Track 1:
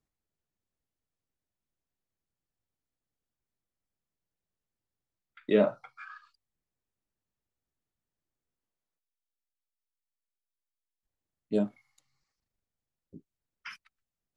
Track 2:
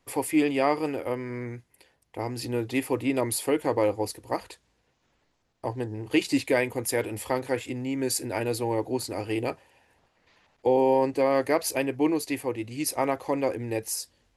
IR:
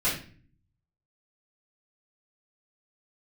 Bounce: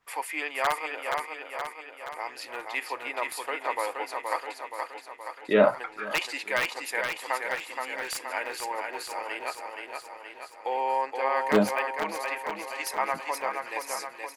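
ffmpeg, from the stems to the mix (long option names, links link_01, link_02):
-filter_complex "[0:a]aeval=exprs='val(0)*pow(10,-20*(0.5-0.5*cos(2*PI*0.69*n/s))/20)':channel_layout=same,volume=2dB,asplit=2[link_01][link_02];[link_02]volume=-20dB[link_03];[1:a]highpass=870,aeval=exprs='(mod(7.08*val(0)+1,2)-1)/7.08':channel_layout=same,adynamicequalizer=threshold=0.00447:dfrequency=2000:dqfactor=0.7:tfrequency=2000:tqfactor=0.7:attack=5:release=100:ratio=0.375:range=3.5:mode=cutabove:tftype=highshelf,volume=-6dB,asplit=3[link_04][link_05][link_06];[link_04]atrim=end=1.25,asetpts=PTS-STARTPTS,afade=type=out:start_time=1.246:duration=0.004:curve=hsin[link_07];[link_05]atrim=start=1.25:end=2.16,asetpts=PTS-STARTPTS,volume=0[link_08];[link_06]atrim=start=2.16,asetpts=PTS-STARTPTS,afade=type=in:duration=0.004:curve=hsin[link_09];[link_07][link_08][link_09]concat=n=3:v=0:a=1,asplit=2[link_10][link_11];[link_11]volume=-4.5dB[link_12];[link_03][link_12]amix=inputs=2:normalize=0,aecho=0:1:473|946|1419|1892|2365|2838|3311|3784|4257:1|0.58|0.336|0.195|0.113|0.0656|0.0381|0.0221|0.0128[link_13];[link_01][link_10][link_13]amix=inputs=3:normalize=0,equalizer=frequency=1500:width_type=o:width=2.8:gain=12.5"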